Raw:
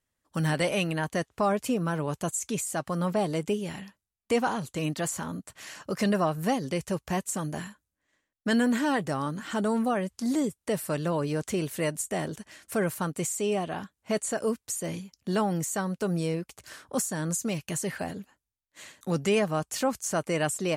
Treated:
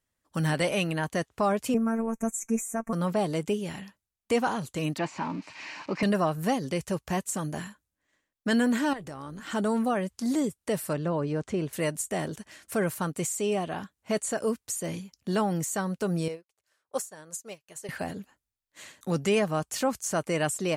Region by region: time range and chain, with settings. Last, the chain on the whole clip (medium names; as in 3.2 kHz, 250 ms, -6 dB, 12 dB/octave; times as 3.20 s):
1.74–2.93 s: elliptic band-stop 2.4–6 kHz + bass shelf 290 Hz +9 dB + robot voice 226 Hz
4.98–6.03 s: zero-crossing glitches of -29.5 dBFS + cabinet simulation 140–4300 Hz, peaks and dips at 300 Hz +8 dB, 480 Hz -4 dB, 920 Hz +10 dB, 1.4 kHz -3 dB, 2.4 kHz +9 dB, 3.4 kHz -9 dB
8.93–9.47 s: AM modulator 210 Hz, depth 25% + compression 3:1, threshold -38 dBFS
10.93–11.73 s: low-pass 8.2 kHz + treble shelf 2.4 kHz -10.5 dB
16.28–17.89 s: resonant low shelf 340 Hz -8 dB, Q 1.5 + upward expansion 2.5:1, over -44 dBFS
whole clip: none